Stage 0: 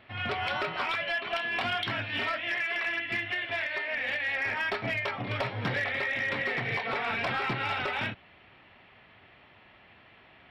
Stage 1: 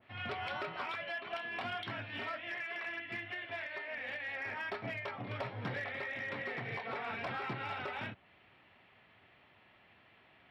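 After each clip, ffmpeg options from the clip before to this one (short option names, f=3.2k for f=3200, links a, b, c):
-af "highpass=64,adynamicequalizer=threshold=0.00631:dfrequency=1800:dqfactor=0.7:tfrequency=1800:tqfactor=0.7:attack=5:release=100:ratio=0.375:range=2.5:mode=cutabove:tftype=highshelf,volume=-7.5dB"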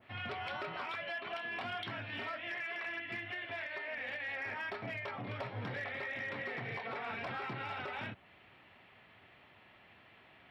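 -af "alimiter=level_in=12dB:limit=-24dB:level=0:latency=1:release=108,volume=-12dB,volume=3dB"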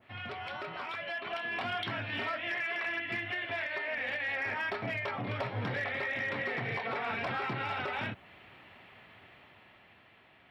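-af "dynaudnorm=f=230:g=11:m=6dB"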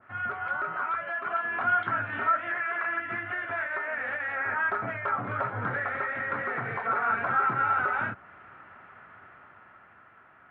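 -af "lowpass=f=1.4k:t=q:w=6.1"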